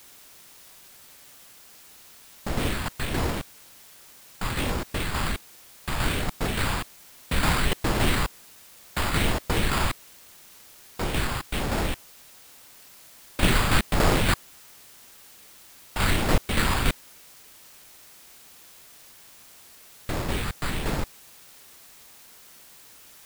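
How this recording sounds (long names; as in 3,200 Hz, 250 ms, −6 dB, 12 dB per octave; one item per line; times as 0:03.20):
phaser sweep stages 4, 1.3 Hz, lowest notch 460–2,900 Hz
aliases and images of a low sample rate 6,000 Hz, jitter 0%
tremolo saw down 3.5 Hz, depth 50%
a quantiser's noise floor 10 bits, dither triangular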